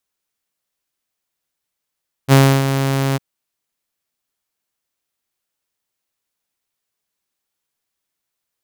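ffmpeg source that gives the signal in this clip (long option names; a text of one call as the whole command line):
ffmpeg -f lavfi -i "aevalsrc='0.668*(2*mod(136*t,1)-1)':duration=0.904:sample_rate=44100,afade=type=in:duration=0.045,afade=type=out:start_time=0.045:duration=0.298:silence=0.335,afade=type=out:start_time=0.88:duration=0.024" out.wav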